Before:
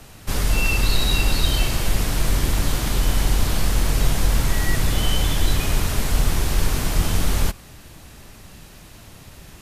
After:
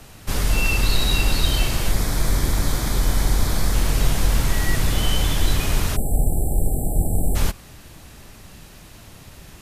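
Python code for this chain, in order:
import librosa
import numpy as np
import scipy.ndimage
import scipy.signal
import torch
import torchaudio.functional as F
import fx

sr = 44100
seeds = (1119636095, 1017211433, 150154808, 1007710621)

y = fx.peak_eq(x, sr, hz=2800.0, db=-12.5, octaves=0.21, at=(1.91, 3.74))
y = fx.spec_erase(y, sr, start_s=5.96, length_s=1.39, low_hz=860.0, high_hz=7400.0)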